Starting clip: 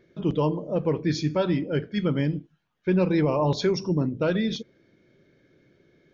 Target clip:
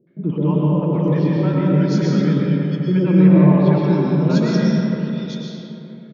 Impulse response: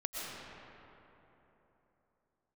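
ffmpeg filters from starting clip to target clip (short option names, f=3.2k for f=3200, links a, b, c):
-filter_complex "[0:a]lowshelf=f=110:t=q:w=3:g=-13.5,acrossover=split=550|3100[a][b][c];[b]adelay=70[d];[c]adelay=770[e];[a][d][e]amix=inputs=3:normalize=0[f];[1:a]atrim=start_sample=2205[g];[f][g]afir=irnorm=-1:irlink=0,volume=2dB"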